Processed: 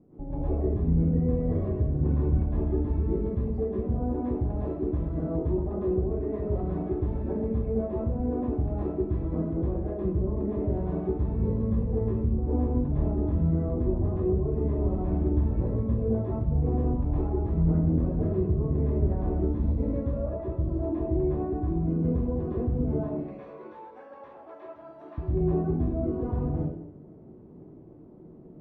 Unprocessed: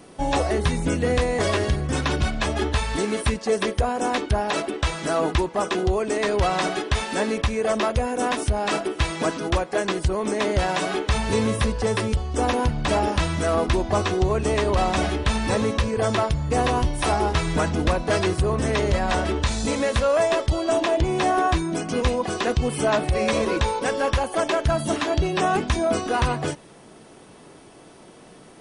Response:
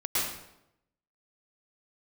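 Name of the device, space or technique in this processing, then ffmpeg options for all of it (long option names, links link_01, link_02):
television next door: -filter_complex "[0:a]asettb=1/sr,asplit=3[link_01][link_02][link_03];[link_01]atrim=end=23.084[link_04];[link_02]atrim=start=23.08:end=25.18,asetpts=PTS-STARTPTS,afade=type=in:duration=0.004:curve=qsin,afade=type=out:start_time=2.096:duration=0.004:curve=qsin,highpass=1100[link_05];[link_03]atrim=start=25.176[link_06];[link_04][link_05]acrossfade=duration=0.004:curve1=hsin:curve2=qsin[link_07];[link_07][link_06]acrossfade=duration=0.004:curve1=qsin:curve2=hsin,acompressor=threshold=-22dB:ratio=6,lowpass=300[link_08];[1:a]atrim=start_sample=2205[link_09];[link_08][link_09]afir=irnorm=-1:irlink=0,volume=-6dB"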